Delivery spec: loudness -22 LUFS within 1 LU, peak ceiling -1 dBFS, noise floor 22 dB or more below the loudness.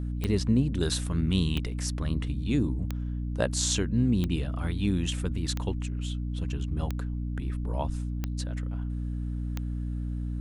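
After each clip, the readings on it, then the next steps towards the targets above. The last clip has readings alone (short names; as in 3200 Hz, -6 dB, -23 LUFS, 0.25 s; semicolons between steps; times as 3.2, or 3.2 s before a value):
clicks 8; hum 60 Hz; harmonics up to 300 Hz; hum level -29 dBFS; loudness -30.0 LUFS; peak -10.5 dBFS; loudness target -22.0 LUFS
-> de-click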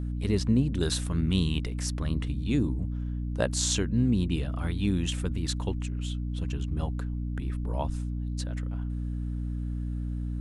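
clicks 0; hum 60 Hz; harmonics up to 300 Hz; hum level -29 dBFS
-> de-hum 60 Hz, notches 5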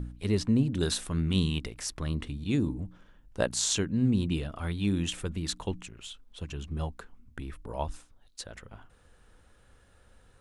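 hum none; loudness -30.5 LUFS; peak -11.0 dBFS; loudness target -22.0 LUFS
-> gain +8.5 dB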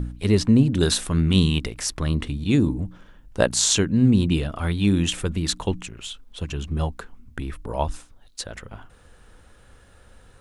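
loudness -22.0 LUFS; peak -2.5 dBFS; noise floor -52 dBFS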